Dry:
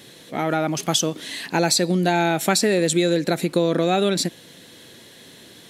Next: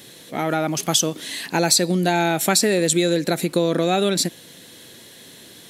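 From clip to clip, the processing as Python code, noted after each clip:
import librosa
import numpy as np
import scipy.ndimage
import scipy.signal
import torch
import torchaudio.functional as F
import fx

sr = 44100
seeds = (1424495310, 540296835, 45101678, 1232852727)

y = fx.high_shelf(x, sr, hz=7000.0, db=7.5)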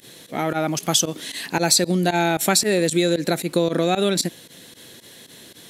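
y = fx.volume_shaper(x, sr, bpm=114, per_beat=2, depth_db=-20, release_ms=62.0, shape='fast start')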